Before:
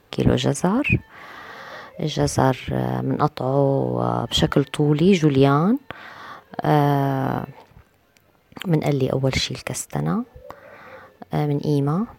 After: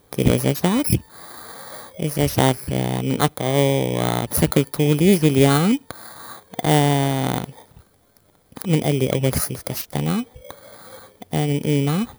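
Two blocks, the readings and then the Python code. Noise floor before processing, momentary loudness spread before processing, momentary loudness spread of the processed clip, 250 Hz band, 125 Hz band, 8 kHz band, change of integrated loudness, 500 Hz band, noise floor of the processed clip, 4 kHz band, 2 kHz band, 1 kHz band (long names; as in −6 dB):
−59 dBFS, 20 LU, 20 LU, +1.0 dB, +1.0 dB, +6.0 dB, +1.0 dB, +0.5 dB, −58 dBFS, 0.0 dB, +0.5 dB, −1.0 dB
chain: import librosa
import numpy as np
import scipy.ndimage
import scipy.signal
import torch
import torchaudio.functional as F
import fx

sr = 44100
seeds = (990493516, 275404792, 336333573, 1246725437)

y = fx.bit_reversed(x, sr, seeds[0], block=16)
y = fx.doppler_dist(y, sr, depth_ms=0.33)
y = y * 10.0 ** (1.0 / 20.0)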